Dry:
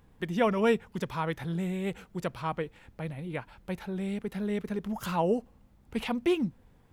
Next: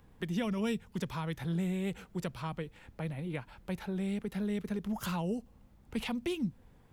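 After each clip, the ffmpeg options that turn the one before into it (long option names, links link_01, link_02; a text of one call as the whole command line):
ffmpeg -i in.wav -filter_complex "[0:a]acrossover=split=230|3000[link_01][link_02][link_03];[link_02]acompressor=threshold=-38dB:ratio=6[link_04];[link_01][link_04][link_03]amix=inputs=3:normalize=0" out.wav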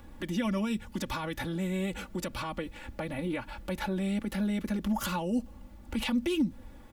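ffmpeg -i in.wav -af "alimiter=level_in=9dB:limit=-24dB:level=0:latency=1:release=71,volume=-9dB,aecho=1:1:3.5:0.8,volume=8.5dB" out.wav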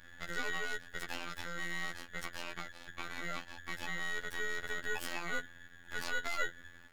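ffmpeg -i in.wav -af "aeval=exprs='val(0)*sin(2*PI*1700*n/s)':channel_layout=same,aeval=exprs='max(val(0),0)':channel_layout=same,afftfilt=real='hypot(re,im)*cos(PI*b)':imag='0':win_size=2048:overlap=0.75,volume=2.5dB" out.wav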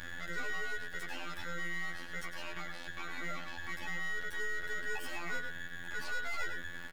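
ffmpeg -i in.wav -filter_complex "[0:a]asoftclip=type=tanh:threshold=-29dB,asplit=2[link_01][link_02];[link_02]adelay=99.13,volume=-10dB,highshelf=frequency=4000:gain=-2.23[link_03];[link_01][link_03]amix=inputs=2:normalize=0,alimiter=level_in=15.5dB:limit=-24dB:level=0:latency=1:release=229,volume=-15.5dB,volume=13dB" out.wav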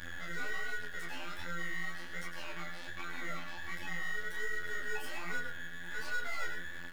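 ffmpeg -i in.wav -filter_complex "[0:a]flanger=delay=22.5:depth=7.8:speed=1.3,asplit=2[link_01][link_02];[link_02]acrusher=bits=4:mode=log:mix=0:aa=0.000001,volume=-10dB[link_03];[link_01][link_03]amix=inputs=2:normalize=0" out.wav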